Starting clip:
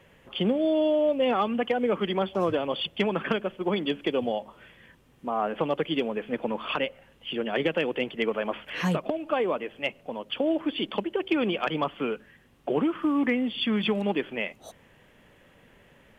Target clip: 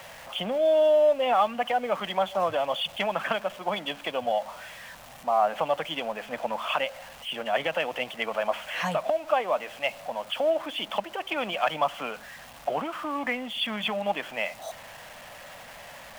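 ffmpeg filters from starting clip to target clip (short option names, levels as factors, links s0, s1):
-af "aeval=exprs='val(0)+0.5*0.01*sgn(val(0))':c=same,lowshelf=f=510:t=q:w=3:g=-8.5"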